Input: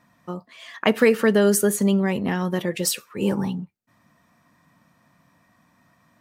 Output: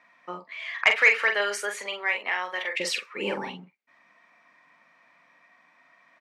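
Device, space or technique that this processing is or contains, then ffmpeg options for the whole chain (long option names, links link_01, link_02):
intercom: -filter_complex "[0:a]asettb=1/sr,asplit=3[link_01][link_02][link_03];[link_01]atrim=end=0.744[link_04];[link_02]atrim=start=0.74:end=2.8,asetpts=PTS-STARTPTS,afade=type=in:duration=0.004:curve=qsin,afade=type=out:start_time=2.056:duration=0.004:curve=qsin,highpass=770[link_05];[link_03]atrim=start=2.796[link_06];[link_04][link_05]acrossfade=duration=0.004:curve1=hsin:curve2=qsin[link_07];[link_07][link_06]acrossfade=duration=0.004:curve1=qsin:curve2=hsin,highpass=500,lowpass=4200,equalizer=frequency=2200:width_type=o:width=0.45:gain=11.5,asoftclip=type=tanh:threshold=-5.5dB,asplit=2[link_08][link_09];[link_09]adelay=44,volume=-6dB[link_10];[link_08][link_10]amix=inputs=2:normalize=0"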